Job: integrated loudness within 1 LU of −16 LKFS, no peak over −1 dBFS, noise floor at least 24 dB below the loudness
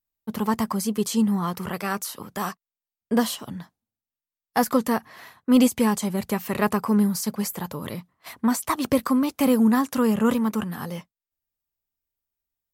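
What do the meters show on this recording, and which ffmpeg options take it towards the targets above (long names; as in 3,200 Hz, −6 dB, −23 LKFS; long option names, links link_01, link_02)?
integrated loudness −24.0 LKFS; sample peak −7.5 dBFS; target loudness −16.0 LKFS
→ -af "volume=8dB,alimiter=limit=-1dB:level=0:latency=1"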